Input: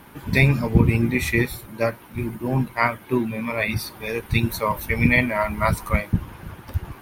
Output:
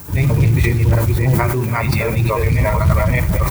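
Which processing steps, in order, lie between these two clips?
delay that plays each chunk backwards 638 ms, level 0 dB
high-pass filter 66 Hz 12 dB per octave
RIAA equalisation playback
background noise violet −41 dBFS
brickwall limiter −10.5 dBFS, peak gain reduction 18.5 dB
parametric band 230 Hz −14.5 dB 0.39 octaves
log-companded quantiser 6 bits
time stretch by overlap-add 0.5×, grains 137 ms
multi-tap delay 55/89/293 ms −17.5/−17.5/−19.5 dB
level that may fall only so fast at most 33 dB per second
level +5 dB

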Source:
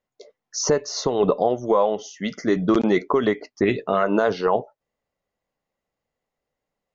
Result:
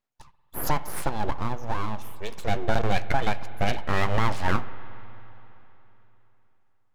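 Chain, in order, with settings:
0:01.09–0:02.32: parametric band 1,100 Hz −15 dB 1.5 octaves
full-wave rectification
on a send: convolution reverb RT60 3.4 s, pre-delay 46 ms, DRR 14.5 dB
on the sum: level −2 dB

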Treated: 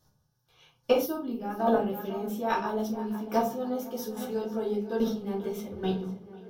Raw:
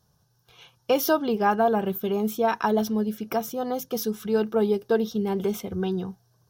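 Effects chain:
on a send: tape delay 501 ms, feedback 63%, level −12.5 dB, low-pass 5,400 Hz
on the sum: square-wave tremolo 1.2 Hz, depth 65%, duty 10%
rectangular room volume 170 cubic metres, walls furnished, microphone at 2.5 metres
gain on a spectral selection 0:01.06–0:01.60, 390–8,600 Hz −8 dB
level −4 dB

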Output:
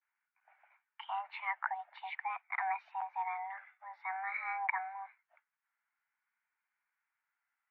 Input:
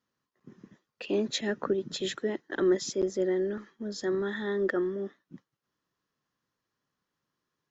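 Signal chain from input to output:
pitch vibrato 0.49 Hz 69 cents
single-sideband voice off tune +380 Hz 540–2,200 Hz

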